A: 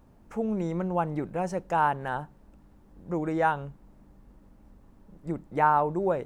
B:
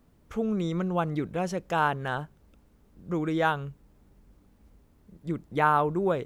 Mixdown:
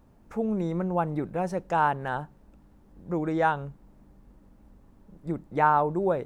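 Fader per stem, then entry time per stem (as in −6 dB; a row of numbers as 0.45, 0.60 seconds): −1.0, −12.5 decibels; 0.00, 0.00 seconds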